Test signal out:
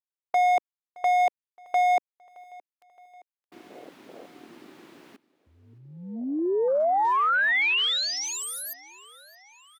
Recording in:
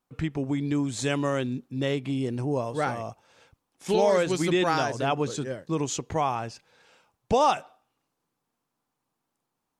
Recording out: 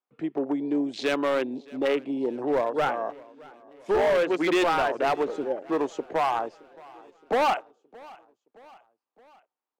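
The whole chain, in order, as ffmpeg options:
ffmpeg -i in.wav -filter_complex "[0:a]afwtdn=0.0158,highpass=210,acrossover=split=280 4000:gain=0.0794 1 0.251[link_01][link_02][link_03];[link_01][link_02][link_03]amix=inputs=3:normalize=0,asplit=2[link_04][link_05];[link_05]alimiter=limit=-20dB:level=0:latency=1:release=346,volume=2dB[link_06];[link_04][link_06]amix=inputs=2:normalize=0,asoftclip=type=hard:threshold=-19dB,asplit=2[link_07][link_08];[link_08]aecho=0:1:619|1238|1857|2476:0.0708|0.0389|0.0214|0.0118[link_09];[link_07][link_09]amix=inputs=2:normalize=0" out.wav

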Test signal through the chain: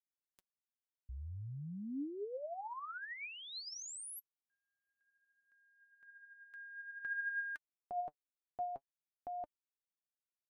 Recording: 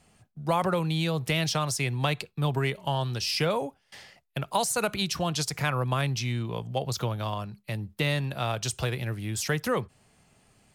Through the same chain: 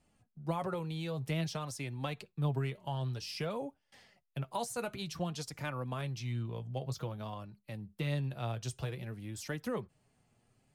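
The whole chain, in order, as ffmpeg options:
ffmpeg -i in.wav -af "tiltshelf=frequency=790:gain=3,flanger=delay=3.3:depth=5.2:regen=46:speed=0.53:shape=sinusoidal,volume=-7dB" out.wav

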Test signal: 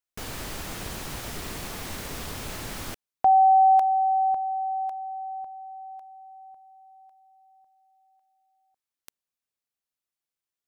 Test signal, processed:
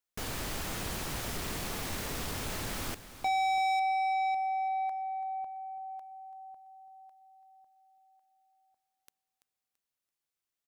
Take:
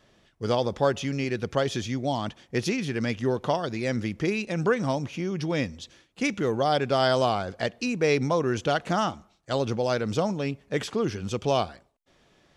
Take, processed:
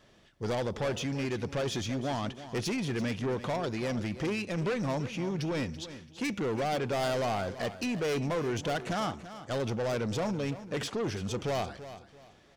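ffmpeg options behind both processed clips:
ffmpeg -i in.wav -filter_complex "[0:a]asoftclip=type=tanh:threshold=-27.5dB,asplit=2[link_01][link_02];[link_02]aecho=0:1:335|670|1005:0.211|0.0613|0.0178[link_03];[link_01][link_03]amix=inputs=2:normalize=0" out.wav

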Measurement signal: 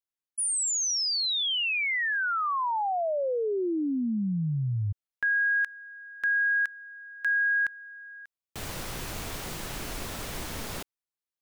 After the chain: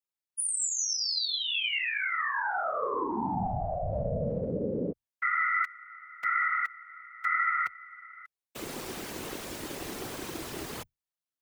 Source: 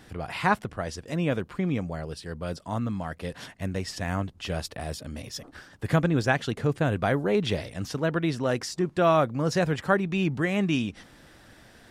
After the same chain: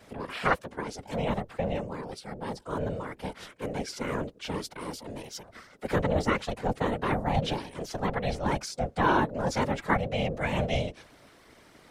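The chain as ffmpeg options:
ffmpeg -i in.wav -af "aeval=exprs='val(0)*sin(2*PI*320*n/s)':channel_layout=same,afreqshift=25,afftfilt=real='hypot(re,im)*cos(2*PI*random(0))':imag='hypot(re,im)*sin(2*PI*random(1))':win_size=512:overlap=0.75,volume=6dB" out.wav

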